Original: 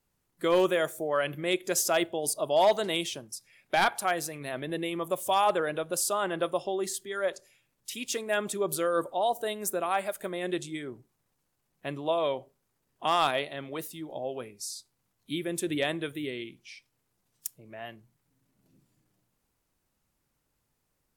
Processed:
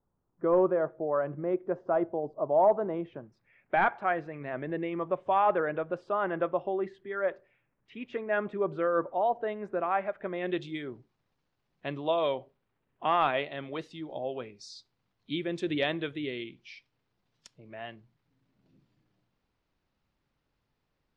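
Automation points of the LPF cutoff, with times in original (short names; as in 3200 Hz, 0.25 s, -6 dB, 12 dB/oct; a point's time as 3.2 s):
LPF 24 dB/oct
2.95 s 1200 Hz
3.35 s 2100 Hz
10.2 s 2100 Hz
10.77 s 4700 Hz
12.18 s 4700 Hz
13.19 s 2500 Hz
13.76 s 4600 Hz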